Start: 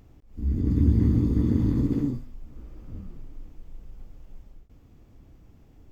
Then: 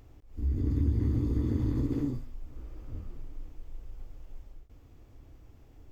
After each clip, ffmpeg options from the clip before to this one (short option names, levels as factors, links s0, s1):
-af "equalizer=f=190:w=2.7:g=-12.5,acompressor=threshold=0.0447:ratio=2"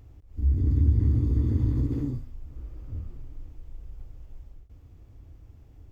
-af "equalizer=f=78:t=o:w=2.3:g=9.5,volume=0.75"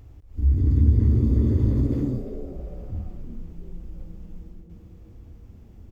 -filter_complex "[0:a]asplit=4[s0][s1][s2][s3];[s1]adelay=345,afreqshift=150,volume=0.224[s4];[s2]adelay=690,afreqshift=300,volume=0.0759[s5];[s3]adelay=1035,afreqshift=450,volume=0.026[s6];[s0][s4][s5][s6]amix=inputs=4:normalize=0,volume=1.5"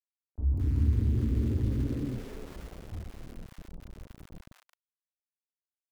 -filter_complex "[0:a]aeval=exprs='val(0)*gte(abs(val(0)),0.0211)':c=same,acrossover=split=890[s0][s1];[s1]adelay=220[s2];[s0][s2]amix=inputs=2:normalize=0,volume=0.398"